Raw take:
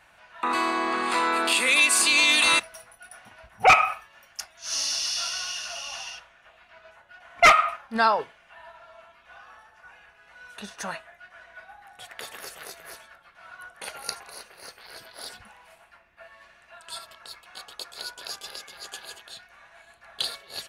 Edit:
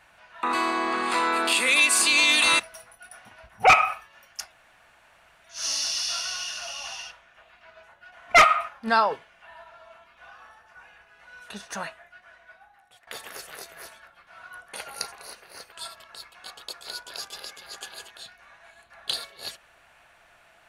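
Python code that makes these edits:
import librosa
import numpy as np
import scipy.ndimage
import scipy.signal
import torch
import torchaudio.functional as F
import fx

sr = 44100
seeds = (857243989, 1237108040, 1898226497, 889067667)

y = fx.edit(x, sr, fx.insert_room_tone(at_s=4.52, length_s=0.92),
    fx.fade_out_to(start_s=10.92, length_s=1.23, floor_db=-16.0),
    fx.cut(start_s=14.8, length_s=2.03), tone=tone)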